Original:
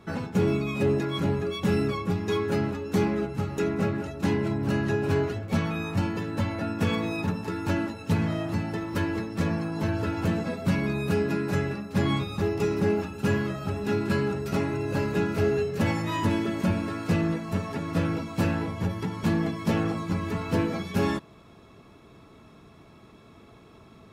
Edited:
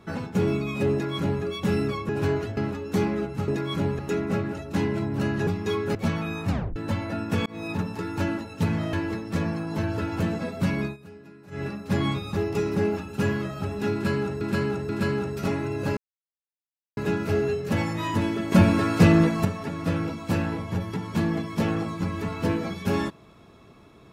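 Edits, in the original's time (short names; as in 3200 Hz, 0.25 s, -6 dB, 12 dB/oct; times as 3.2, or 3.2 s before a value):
0.92–1.43 copy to 3.48
2.09–2.57 swap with 4.96–5.44
5.98 tape stop 0.27 s
6.95–7.3 fade in equal-power
8.42–8.98 cut
10.89–11.69 dip -20.5 dB, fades 0.13 s
13.98–14.46 loop, 3 plays
15.06 insert silence 1.00 s
16.61–17.54 gain +8.5 dB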